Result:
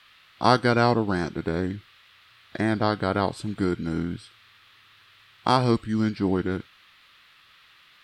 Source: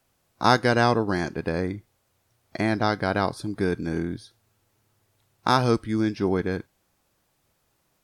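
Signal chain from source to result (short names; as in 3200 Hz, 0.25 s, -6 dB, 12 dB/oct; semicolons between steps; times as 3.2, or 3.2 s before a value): band noise 1200–4500 Hz -56 dBFS; formant shift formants -2 st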